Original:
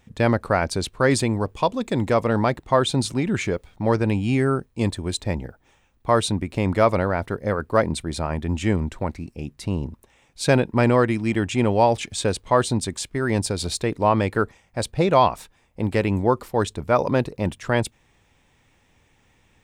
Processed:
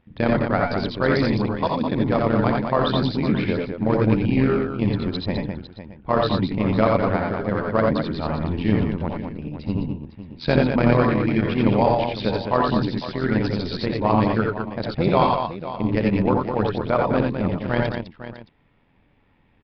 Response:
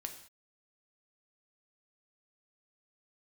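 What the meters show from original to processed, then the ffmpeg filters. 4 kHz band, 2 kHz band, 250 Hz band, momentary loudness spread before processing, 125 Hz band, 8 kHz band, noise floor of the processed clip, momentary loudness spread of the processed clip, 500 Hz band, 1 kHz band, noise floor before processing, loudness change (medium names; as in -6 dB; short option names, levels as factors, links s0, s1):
-1.5 dB, -0.5 dB, +3.0 dB, 9 LU, +1.0 dB, under -25 dB, -60 dBFS, 9 LU, 0.0 dB, 0.0 dB, -62 dBFS, +0.5 dB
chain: -filter_complex "[0:a]equalizer=f=210:t=o:w=0.4:g=7,tremolo=f=84:d=0.75,adynamicsmooth=sensitivity=6:basefreq=2900,asplit=2[s0][s1];[s1]aecho=0:1:64|84|91|207|504|620:0.398|0.596|0.531|0.473|0.237|0.119[s2];[s0][s2]amix=inputs=2:normalize=0,aresample=11025,aresample=44100"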